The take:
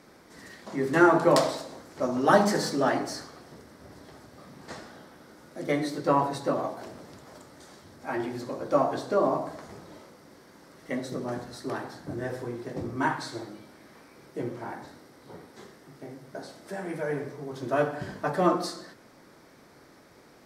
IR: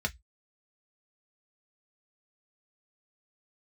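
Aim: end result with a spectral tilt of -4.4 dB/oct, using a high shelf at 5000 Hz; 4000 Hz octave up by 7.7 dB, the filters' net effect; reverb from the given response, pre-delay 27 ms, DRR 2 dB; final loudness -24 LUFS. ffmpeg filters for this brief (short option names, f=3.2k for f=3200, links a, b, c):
-filter_complex "[0:a]equalizer=f=4k:t=o:g=6,highshelf=f=5k:g=6.5,asplit=2[a][b];[1:a]atrim=start_sample=2205,adelay=27[c];[b][c]afir=irnorm=-1:irlink=0,volume=-7.5dB[d];[a][d]amix=inputs=2:normalize=0,volume=1.5dB"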